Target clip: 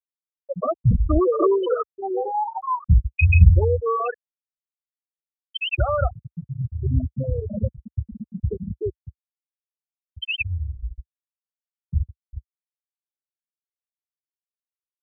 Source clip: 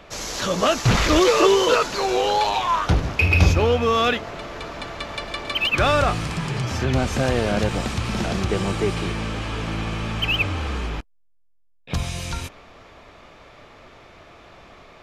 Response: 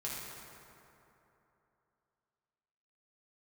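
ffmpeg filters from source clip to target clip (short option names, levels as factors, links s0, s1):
-af "afftfilt=real='re*gte(hypot(re,im),0.562)':imag='im*gte(hypot(re,im),0.562)':win_size=1024:overlap=0.75,equalizer=f=66:t=o:w=1.5:g=8.5,volume=0.794"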